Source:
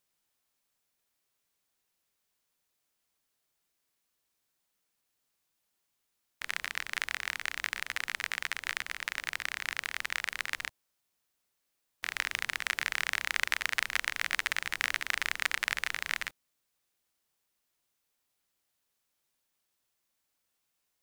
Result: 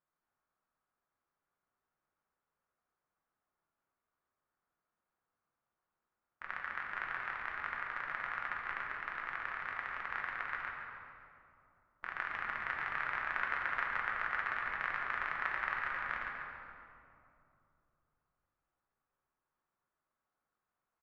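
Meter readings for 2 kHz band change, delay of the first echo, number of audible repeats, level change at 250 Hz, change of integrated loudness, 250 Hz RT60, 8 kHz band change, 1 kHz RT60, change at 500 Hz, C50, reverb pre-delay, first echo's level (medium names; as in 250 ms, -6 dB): -4.5 dB, 139 ms, 2, -2.0 dB, -5.0 dB, 3.5 s, under -30 dB, 2.5 s, -0.5 dB, 1.0 dB, 6 ms, -9.5 dB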